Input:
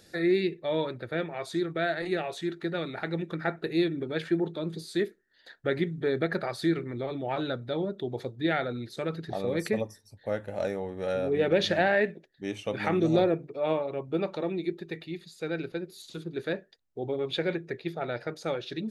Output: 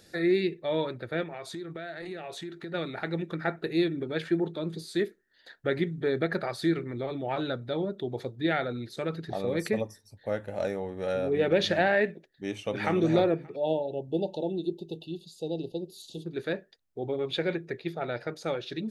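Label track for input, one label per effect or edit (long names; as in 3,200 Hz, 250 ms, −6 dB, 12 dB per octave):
1.230000	2.740000	downward compressor, threshold −35 dBFS
12.460000	12.970000	delay throw 290 ms, feedback 15%, level −10 dB
13.560000	16.260000	linear-phase brick-wall band-stop 930–2,600 Hz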